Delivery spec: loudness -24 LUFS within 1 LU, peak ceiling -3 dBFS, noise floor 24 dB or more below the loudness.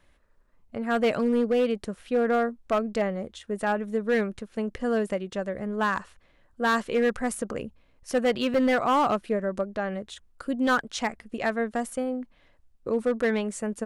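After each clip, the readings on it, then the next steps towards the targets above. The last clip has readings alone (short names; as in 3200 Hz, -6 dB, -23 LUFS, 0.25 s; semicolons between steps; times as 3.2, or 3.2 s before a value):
clipped 1.3%; flat tops at -17.5 dBFS; dropouts 1; longest dropout 3.0 ms; loudness -27.0 LUFS; peak -17.5 dBFS; loudness target -24.0 LUFS
-> clip repair -17.5 dBFS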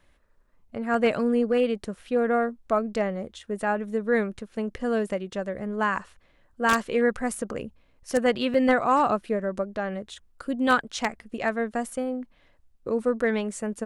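clipped 0.0%; dropouts 1; longest dropout 3.0 ms
-> interpolate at 8.54, 3 ms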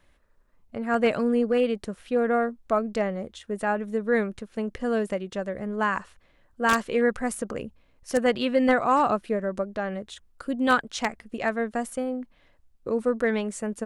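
dropouts 0; loudness -26.5 LUFS; peak -8.5 dBFS; loudness target -24.0 LUFS
-> gain +2.5 dB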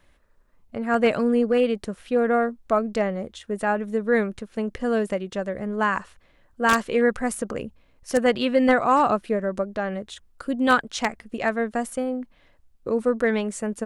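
loudness -24.0 LUFS; peak -6.0 dBFS; noise floor -60 dBFS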